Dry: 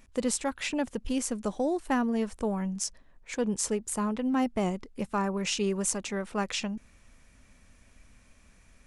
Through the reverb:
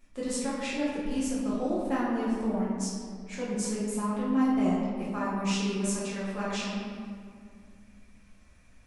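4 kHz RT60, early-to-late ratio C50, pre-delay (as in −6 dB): 1.2 s, −1.0 dB, 6 ms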